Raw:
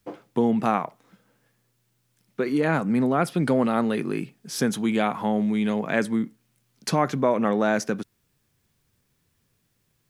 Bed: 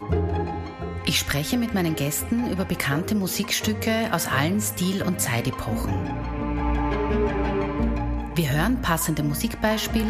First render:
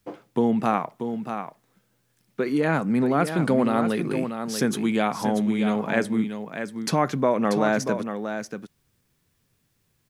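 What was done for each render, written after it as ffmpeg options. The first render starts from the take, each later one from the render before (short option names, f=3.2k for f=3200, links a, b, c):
-af "aecho=1:1:636:0.398"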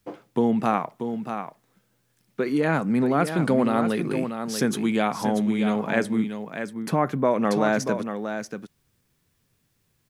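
-filter_complex "[0:a]asettb=1/sr,asplit=3[a][b][c];[a]atrim=end=6.734[d];[b]atrim=start=6.73:end=7.25,asetpts=PTS-STARTPTS,afade=t=in:d=0.004:c=qsin,afade=t=out:st=0.516:d=0.004:c=qsin,equalizer=f=5.4k:t=o:w=1.6:g=-12.5[e];[c]atrim=start=7.246[f];[d][e]acrossfade=d=0.004:c1=hsin:c2=qsin[g];[g][f]acrossfade=d=0.004:c1=qsin:c2=hsin"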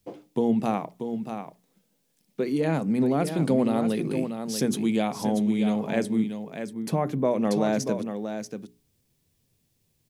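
-af "equalizer=f=1.4k:w=1.1:g=-11.5,bandreject=f=60:t=h:w=6,bandreject=f=120:t=h:w=6,bandreject=f=180:t=h:w=6,bandreject=f=240:t=h:w=6,bandreject=f=300:t=h:w=6,bandreject=f=360:t=h:w=6,bandreject=f=420:t=h:w=6"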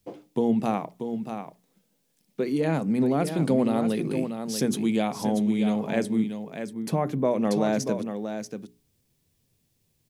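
-af anull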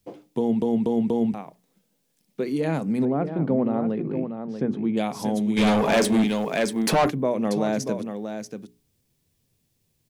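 -filter_complex "[0:a]asettb=1/sr,asplit=3[a][b][c];[a]atrim=end=3.054[d];[b]atrim=start=3.05:end=4.97,asetpts=PTS-STARTPTS,afade=t=in:d=0.004:c=qsin,afade=t=out:st=1.916:d=0.004:c=qsin,lowpass=1.4k[e];[c]atrim=start=4.966[f];[d][e]acrossfade=d=0.004:c1=hsin:c2=qsin[g];[g][f]acrossfade=d=0.004:c1=qsin:c2=hsin,asplit=3[h][i][j];[h]afade=t=out:st=5.56:d=0.02[k];[i]asplit=2[l][m];[m]highpass=f=720:p=1,volume=25dB,asoftclip=type=tanh:threshold=-11dB[n];[l][n]amix=inputs=2:normalize=0,lowpass=f=7.7k:p=1,volume=-6dB,afade=t=in:st=5.56:d=0.02,afade=t=out:st=7.09:d=0.02[o];[j]afade=t=in:st=7.09:d=0.02[p];[k][o][p]amix=inputs=3:normalize=0,asplit=5[q][r][s][t][u];[q]atrim=end=0.622[v];[r]atrim=start=0.378:end=0.622[w];[s]atrim=start=0.378:end=0.622[x];[t]atrim=start=0.378:end=0.622[y];[u]atrim=start=1.338[z];[v][w]acrossfade=d=0.004:c1=hsin:c2=hsin[aa];[aa][x]acrossfade=d=0.004:c1=hsin:c2=hsin[ab];[ab][y]acrossfade=d=0.004:c1=hsin:c2=hsin[ac];[ac][z]acrossfade=d=0.004:c1=hsin:c2=hsin"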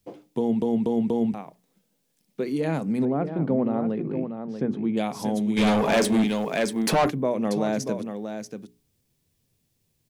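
-af "volume=-1dB"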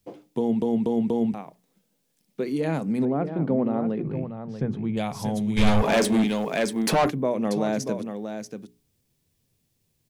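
-filter_complex "[0:a]asplit=3[a][b][c];[a]afade=t=out:st=4.03:d=0.02[d];[b]asubboost=boost=12:cutoff=82,afade=t=in:st=4.03:d=0.02,afade=t=out:st=5.82:d=0.02[e];[c]afade=t=in:st=5.82:d=0.02[f];[d][e][f]amix=inputs=3:normalize=0"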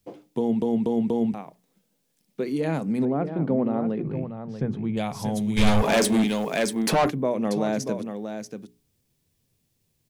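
-filter_complex "[0:a]asettb=1/sr,asplit=3[a][b][c];[a]atrim=end=5.324[d];[b]atrim=start=5.32:end=6.75,asetpts=PTS-STARTPTS,afade=t=in:d=0.004:c=qsin,afade=t=out:st=1.426:d=0.004:c=qsin,highshelf=f=4.9k:g=5.5[e];[c]atrim=start=6.746[f];[d][e]acrossfade=d=0.004:c1=hsin:c2=qsin[g];[g][f]acrossfade=d=0.004:c1=qsin:c2=hsin"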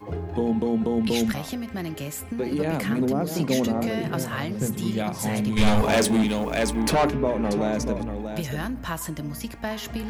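-filter_complex "[1:a]volume=-8dB[a];[0:a][a]amix=inputs=2:normalize=0"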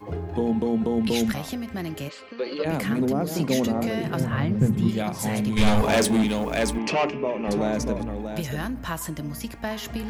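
-filter_complex "[0:a]asplit=3[a][b][c];[a]afade=t=out:st=2.08:d=0.02[d];[b]highpass=460,equalizer=f=530:t=q:w=4:g=8,equalizer=f=790:t=q:w=4:g=-9,equalizer=f=1.2k:t=q:w=4:g=6,equalizer=f=2.9k:t=q:w=4:g=6,equalizer=f=4.4k:t=q:w=4:g=10,lowpass=f=4.8k:w=0.5412,lowpass=f=4.8k:w=1.3066,afade=t=in:st=2.08:d=0.02,afade=t=out:st=2.64:d=0.02[e];[c]afade=t=in:st=2.64:d=0.02[f];[d][e][f]amix=inputs=3:normalize=0,asettb=1/sr,asplit=3[g][h][i];[g]atrim=end=4.204[j];[h]atrim=start=4.2:end=4.89,asetpts=PTS-STARTPTS,afade=t=in:d=0.004:c=qsin,afade=t=out:st=0.686:d=0.004:c=qsin,bass=f=250:g=9,treble=f=4k:g=-13[k];[i]atrim=start=4.886[l];[j][k]acrossfade=d=0.004:c1=hsin:c2=qsin[m];[m][l]acrossfade=d=0.004:c1=qsin:c2=hsin,asettb=1/sr,asplit=3[n][o][p];[n]atrim=end=6.784[q];[o]atrim=start=6.78:end=7.48,asetpts=PTS-STARTPTS,afade=t=in:d=0.004:c=qsin,afade=t=out:st=0.696:d=0.004:c=qsin,highpass=220,equalizer=f=270:t=q:w=4:g=-6,equalizer=f=500:t=q:w=4:g=-3,equalizer=f=800:t=q:w=4:g=-3,equalizer=f=1.5k:t=q:w=4:g=-9,equalizer=f=2.7k:t=q:w=4:g=9,equalizer=f=3.8k:t=q:w=4:g=-9,lowpass=f=5.9k:w=0.5412,lowpass=f=5.9k:w=1.3066[r];[p]atrim=start=7.476[s];[q][r]acrossfade=d=0.004:c1=hsin:c2=qsin[t];[t][s]acrossfade=d=0.004:c1=qsin:c2=hsin"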